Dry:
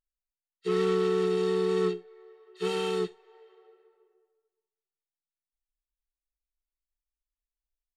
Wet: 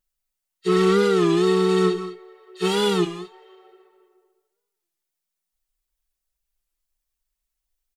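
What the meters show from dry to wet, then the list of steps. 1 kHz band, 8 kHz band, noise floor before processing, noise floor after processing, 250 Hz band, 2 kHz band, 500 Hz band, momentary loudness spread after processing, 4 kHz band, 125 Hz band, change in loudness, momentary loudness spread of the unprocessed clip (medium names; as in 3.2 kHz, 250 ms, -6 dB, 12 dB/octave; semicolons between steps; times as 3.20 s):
+10.0 dB, +12.0 dB, under -85 dBFS, -83 dBFS, +11.0 dB, +10.0 dB, +6.5 dB, 12 LU, +11.0 dB, +10.5 dB, +8.0 dB, 10 LU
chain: treble shelf 5.5 kHz +6 dB; comb 5.4 ms, depth 91%; gated-style reverb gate 230 ms rising, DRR 11.5 dB; warped record 33 1/3 rpm, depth 160 cents; trim +5 dB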